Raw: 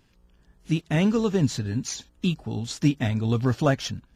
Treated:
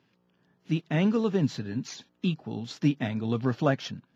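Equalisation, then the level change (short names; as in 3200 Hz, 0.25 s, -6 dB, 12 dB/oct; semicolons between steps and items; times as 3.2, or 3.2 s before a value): running mean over 5 samples; HPF 130 Hz 24 dB/oct; -2.5 dB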